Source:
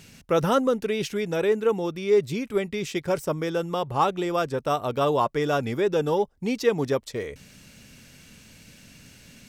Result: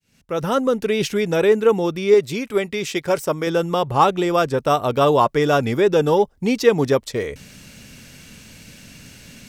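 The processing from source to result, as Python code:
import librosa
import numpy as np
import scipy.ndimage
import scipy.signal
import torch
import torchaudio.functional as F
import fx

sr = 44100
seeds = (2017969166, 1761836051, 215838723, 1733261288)

y = fx.fade_in_head(x, sr, length_s=1.01)
y = fx.low_shelf(y, sr, hz=240.0, db=-8.5, at=(2.14, 3.47))
y = y * 10.0 ** (7.0 / 20.0)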